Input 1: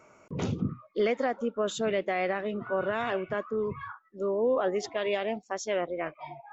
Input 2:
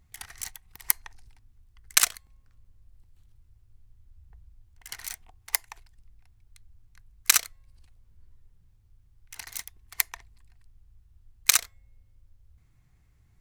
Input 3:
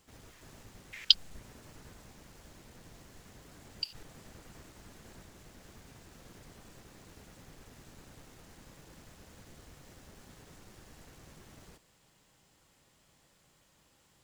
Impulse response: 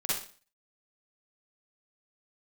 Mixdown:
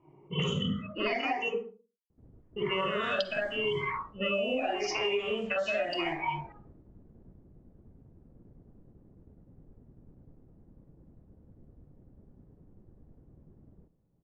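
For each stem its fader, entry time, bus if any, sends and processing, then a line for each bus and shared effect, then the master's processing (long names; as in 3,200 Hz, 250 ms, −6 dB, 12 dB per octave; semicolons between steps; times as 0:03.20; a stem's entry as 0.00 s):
+3.0 dB, 0.00 s, muted 0:01.54–0:02.56, bus A, send −6 dB, rippled gain that drifts along the octave scale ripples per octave 0.74, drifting +0.83 Hz, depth 21 dB
muted
0.0 dB, 2.10 s, no bus, send −21 dB, Butterworth low-pass 9,200 Hz
bus A: 0.0 dB, voice inversion scrambler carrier 3,200 Hz; downward compressor, threshold −26 dBFS, peak gain reduction 11 dB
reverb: on, RT60 0.40 s, pre-delay 41 ms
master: low-pass that shuts in the quiet parts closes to 310 Hz, open at −18 dBFS; downward compressor 12 to 1, threshold −27 dBFS, peak gain reduction 16.5 dB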